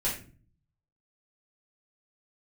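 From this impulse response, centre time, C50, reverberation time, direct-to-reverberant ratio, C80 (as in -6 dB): 30 ms, 6.0 dB, 0.40 s, -7.5 dB, 11.0 dB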